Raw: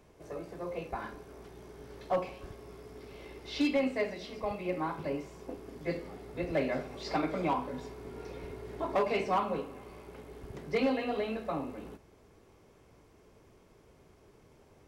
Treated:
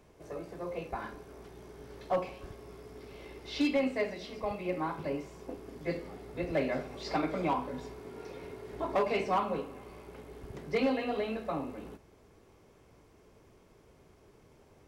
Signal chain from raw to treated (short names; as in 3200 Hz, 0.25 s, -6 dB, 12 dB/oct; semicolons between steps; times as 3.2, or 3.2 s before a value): 7.99–8.73 HPF 150 Hz 6 dB/oct